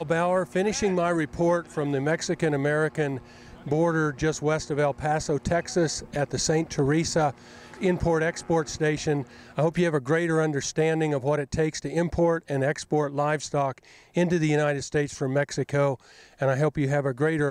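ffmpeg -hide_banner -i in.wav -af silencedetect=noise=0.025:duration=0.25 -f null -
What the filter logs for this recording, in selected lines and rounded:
silence_start: 3.19
silence_end: 3.66 | silence_duration: 0.47
silence_start: 7.31
silence_end: 7.74 | silence_duration: 0.43
silence_start: 9.23
silence_end: 9.58 | silence_duration: 0.35
silence_start: 13.78
silence_end: 14.17 | silence_duration: 0.39
silence_start: 15.95
silence_end: 16.41 | silence_duration: 0.47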